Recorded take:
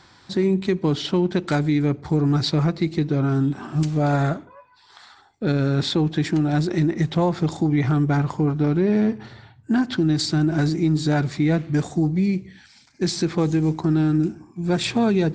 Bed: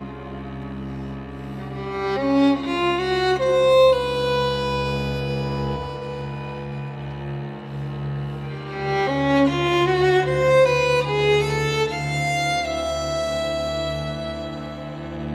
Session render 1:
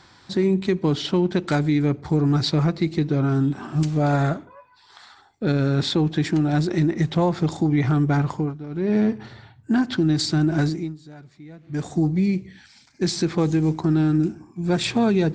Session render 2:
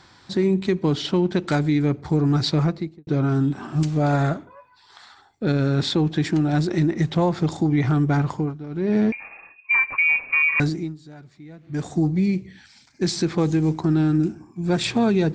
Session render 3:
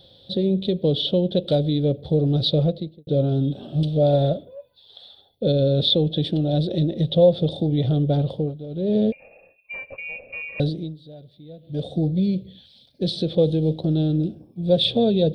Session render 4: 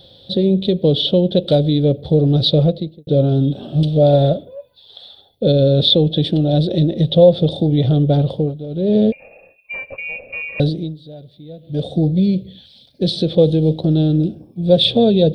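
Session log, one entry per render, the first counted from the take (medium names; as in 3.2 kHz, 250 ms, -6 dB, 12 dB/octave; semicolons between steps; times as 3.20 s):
8.32–8.96 s: dip -14.5 dB, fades 0.27 s; 10.62–11.95 s: dip -22.5 dB, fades 0.34 s
2.60–3.07 s: studio fade out; 9.12–10.60 s: frequency inversion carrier 2.6 kHz
FFT filter 180 Hz 0 dB, 360 Hz -5 dB, 540 Hz +13 dB, 1 kHz -22 dB, 2.2 kHz -20 dB, 3.5 kHz +11 dB, 7.1 kHz -30 dB, 10 kHz +9 dB
trim +6 dB; peak limiter -1 dBFS, peak gain reduction 1 dB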